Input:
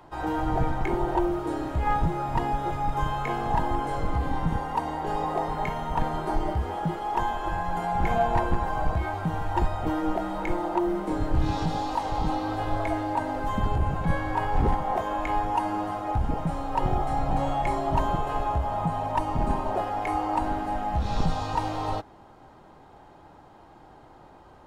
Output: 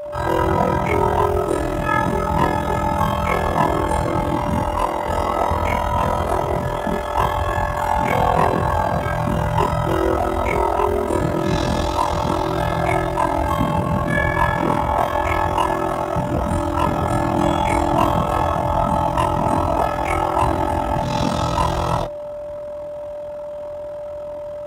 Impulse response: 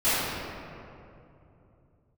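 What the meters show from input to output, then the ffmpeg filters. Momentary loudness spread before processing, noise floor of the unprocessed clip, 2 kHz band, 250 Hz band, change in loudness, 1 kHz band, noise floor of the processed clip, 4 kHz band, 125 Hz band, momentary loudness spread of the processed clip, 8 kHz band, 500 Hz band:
3 LU, -51 dBFS, +10.5 dB, +7.5 dB, +8.5 dB, +7.5 dB, -30 dBFS, +10.5 dB, +8.0 dB, 5 LU, +13.5 dB, +11.0 dB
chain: -filter_complex "[0:a]equalizer=f=410:t=o:w=0.35:g=-4.5[s0];[1:a]atrim=start_sample=2205,atrim=end_sample=3087[s1];[s0][s1]afir=irnorm=-1:irlink=0,aeval=exprs='val(0)*sin(2*PI*21*n/s)':c=same,highshelf=f=5600:g=10.5,afftfilt=real='re*lt(hypot(re,im),1.58)':imag='im*lt(hypot(re,im),1.58)':win_size=1024:overlap=0.75,aeval=exprs='val(0)+0.0447*sin(2*PI*550*n/s)':c=same,afreqshift=40,bandreject=f=4400:w=8.8"

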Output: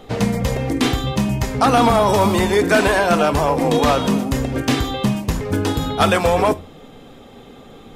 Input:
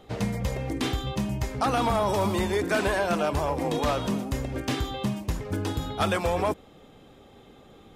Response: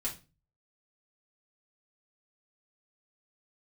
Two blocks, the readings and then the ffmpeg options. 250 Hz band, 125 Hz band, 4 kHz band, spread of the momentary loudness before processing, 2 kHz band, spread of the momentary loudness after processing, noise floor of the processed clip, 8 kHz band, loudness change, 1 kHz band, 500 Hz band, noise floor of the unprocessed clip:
+10.5 dB, +8.5 dB, +10.0 dB, 6 LU, +10.0 dB, 7 LU, -42 dBFS, +10.0 dB, +10.0 dB, +10.0 dB, +10.0 dB, -52 dBFS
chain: -filter_complex "[0:a]asplit=2[s0][s1];[1:a]atrim=start_sample=2205[s2];[s1][s2]afir=irnorm=-1:irlink=0,volume=0.266[s3];[s0][s3]amix=inputs=2:normalize=0,volume=2.66"

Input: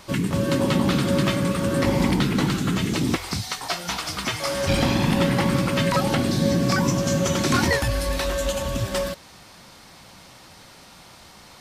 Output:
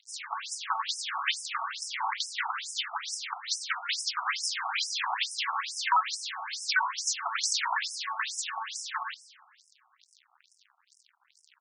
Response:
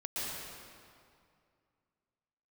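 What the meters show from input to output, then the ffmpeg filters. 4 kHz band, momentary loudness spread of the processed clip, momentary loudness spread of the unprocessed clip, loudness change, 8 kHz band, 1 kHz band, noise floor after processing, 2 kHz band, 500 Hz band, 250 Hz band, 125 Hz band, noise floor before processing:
-3.0 dB, 8 LU, 6 LU, -8.5 dB, -2.5 dB, -2.5 dB, -69 dBFS, -3.5 dB, -32.0 dB, under -40 dB, under -40 dB, -47 dBFS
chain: -filter_complex "[0:a]acrusher=bits=5:mix=0:aa=0.5,asplit=2[s0][s1];[1:a]atrim=start_sample=2205[s2];[s1][s2]afir=irnorm=-1:irlink=0,volume=0.106[s3];[s0][s3]amix=inputs=2:normalize=0,afftfilt=real='re*between(b*sr/1024,960*pow(7300/960,0.5+0.5*sin(2*PI*2.3*pts/sr))/1.41,960*pow(7300/960,0.5+0.5*sin(2*PI*2.3*pts/sr))*1.41)':imag='im*between(b*sr/1024,960*pow(7300/960,0.5+0.5*sin(2*PI*2.3*pts/sr))/1.41,960*pow(7300/960,0.5+0.5*sin(2*PI*2.3*pts/sr))*1.41)':win_size=1024:overlap=0.75,volume=1.33"

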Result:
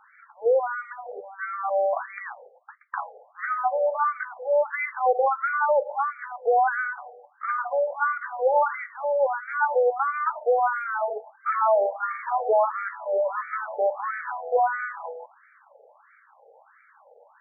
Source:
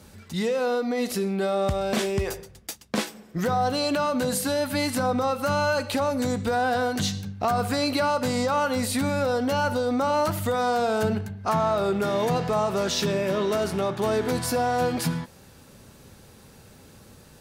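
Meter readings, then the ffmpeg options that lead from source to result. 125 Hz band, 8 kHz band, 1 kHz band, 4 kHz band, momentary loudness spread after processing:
under -40 dB, under -40 dB, +2.5 dB, under -40 dB, 13 LU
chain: -af "afftfilt=real='re*between(b*sr/1024,590*pow(1700/590,0.5+0.5*sin(2*PI*1.5*pts/sr))/1.41,590*pow(1700/590,0.5+0.5*sin(2*PI*1.5*pts/sr))*1.41)':imag='im*between(b*sr/1024,590*pow(1700/590,0.5+0.5*sin(2*PI*1.5*pts/sr))/1.41,590*pow(1700/590,0.5+0.5*sin(2*PI*1.5*pts/sr))*1.41)':win_size=1024:overlap=0.75,volume=2"

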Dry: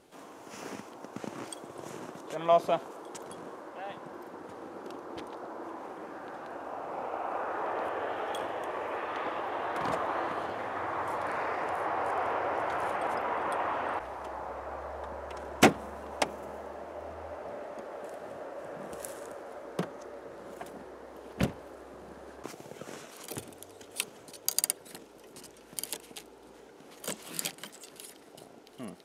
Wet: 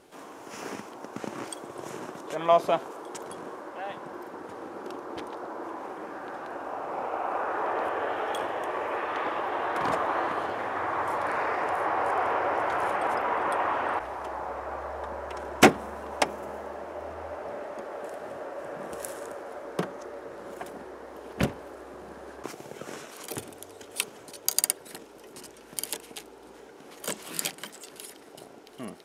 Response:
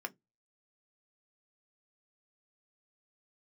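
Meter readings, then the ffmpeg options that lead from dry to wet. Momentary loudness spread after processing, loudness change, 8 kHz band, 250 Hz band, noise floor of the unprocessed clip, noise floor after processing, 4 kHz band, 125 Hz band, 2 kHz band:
16 LU, +4.0 dB, +3.5 dB, +3.5 dB, -53 dBFS, -49 dBFS, +3.5 dB, +2.0 dB, +5.0 dB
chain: -filter_complex "[0:a]asplit=2[s0][s1];[1:a]atrim=start_sample=2205[s2];[s1][s2]afir=irnorm=-1:irlink=0,volume=0.299[s3];[s0][s3]amix=inputs=2:normalize=0,volume=1.33"

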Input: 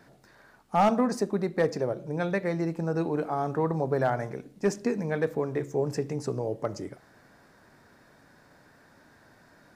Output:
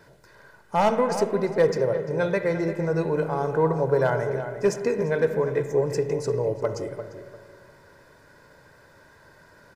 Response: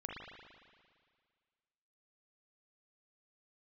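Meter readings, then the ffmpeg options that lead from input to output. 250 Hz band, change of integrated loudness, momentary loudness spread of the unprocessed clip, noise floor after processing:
0.0 dB, +4.5 dB, 7 LU, -55 dBFS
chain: -filter_complex "[0:a]aecho=1:1:2:0.57,asplit=2[s0][s1];[s1]adelay=347,lowpass=f=1900:p=1,volume=0.335,asplit=2[s2][s3];[s3]adelay=347,lowpass=f=1900:p=1,volume=0.28,asplit=2[s4][s5];[s5]adelay=347,lowpass=f=1900:p=1,volume=0.28[s6];[s0][s2][s4][s6]amix=inputs=4:normalize=0,asplit=2[s7][s8];[1:a]atrim=start_sample=2205[s9];[s8][s9]afir=irnorm=-1:irlink=0,volume=0.562[s10];[s7][s10]amix=inputs=2:normalize=0"

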